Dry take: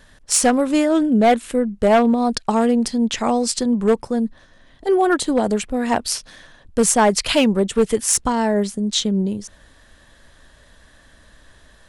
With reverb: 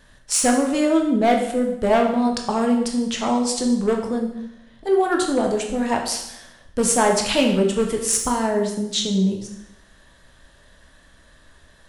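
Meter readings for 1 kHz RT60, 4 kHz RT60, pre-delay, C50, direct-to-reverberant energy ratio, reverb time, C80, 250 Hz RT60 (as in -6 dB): 0.85 s, 0.75 s, 7 ms, 6.0 dB, 1.5 dB, 0.80 s, 8.5 dB, 0.80 s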